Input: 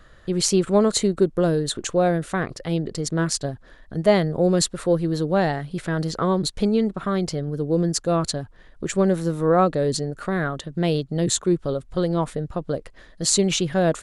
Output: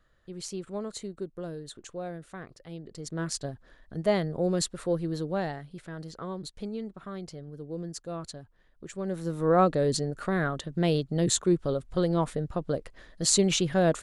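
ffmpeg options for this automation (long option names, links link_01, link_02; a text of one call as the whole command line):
ffmpeg -i in.wav -af "volume=4dB,afade=type=in:start_time=2.83:duration=0.56:silence=0.334965,afade=type=out:start_time=5.13:duration=0.71:silence=0.421697,afade=type=in:start_time=9.01:duration=0.6:silence=0.251189" out.wav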